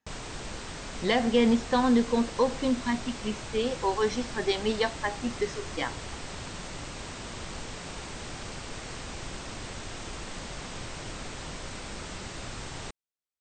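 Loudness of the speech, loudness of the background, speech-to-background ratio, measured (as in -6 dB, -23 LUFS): -28.0 LUFS, -39.0 LUFS, 11.0 dB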